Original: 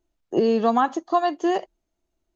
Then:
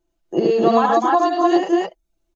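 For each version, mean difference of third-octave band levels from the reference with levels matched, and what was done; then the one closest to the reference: 6.0 dB: comb 5.9 ms, depth 52%; reverb removal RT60 0.52 s; on a send: loudspeakers at several distances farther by 25 m -2 dB, 37 m -5 dB, 87 m -5 dB, 98 m 0 dB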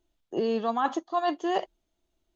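2.5 dB: dynamic bell 1.1 kHz, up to +5 dB, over -31 dBFS, Q 0.85; reverse; compression 12:1, threshold -23 dBFS, peak gain reduction 12.5 dB; reverse; peaking EQ 3.4 kHz +7 dB 0.52 oct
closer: second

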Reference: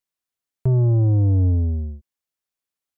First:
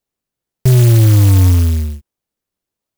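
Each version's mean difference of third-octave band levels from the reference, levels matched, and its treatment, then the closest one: 11.0 dB: in parallel at -6 dB: decimation with a swept rate 30×, swing 100% 0.9 Hz; on the sum: sampling jitter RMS 0.14 ms; trim +5 dB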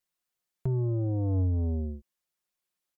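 2.0 dB: comb 5.6 ms, depth 64%; peak limiter -22 dBFS, peak gain reduction 11 dB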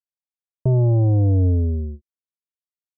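1.0 dB: gate with hold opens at -22 dBFS; low-pass sweep 730 Hz -> 200 Hz, 1.06–2.86 s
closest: third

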